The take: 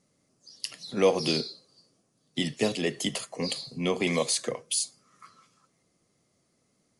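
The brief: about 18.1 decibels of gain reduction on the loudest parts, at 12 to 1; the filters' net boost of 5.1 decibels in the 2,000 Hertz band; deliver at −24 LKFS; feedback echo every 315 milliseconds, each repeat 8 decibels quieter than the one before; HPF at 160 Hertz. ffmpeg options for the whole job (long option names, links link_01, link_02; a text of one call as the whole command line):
ffmpeg -i in.wav -af "highpass=160,equalizer=frequency=2000:width_type=o:gain=6,acompressor=threshold=-34dB:ratio=12,aecho=1:1:315|630|945|1260|1575:0.398|0.159|0.0637|0.0255|0.0102,volume=14.5dB" out.wav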